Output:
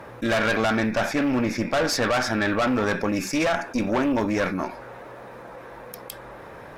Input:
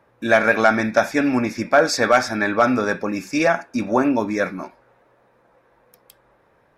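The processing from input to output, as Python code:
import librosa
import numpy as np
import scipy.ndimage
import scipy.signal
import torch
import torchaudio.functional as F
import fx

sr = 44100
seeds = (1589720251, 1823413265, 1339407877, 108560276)

y = fx.high_shelf(x, sr, hz=4400.0, db=-6.5, at=(0.51, 2.87))
y = fx.tube_stage(y, sr, drive_db=19.0, bias=0.65)
y = fx.quant_float(y, sr, bits=6)
y = fx.env_flatten(y, sr, amount_pct=50)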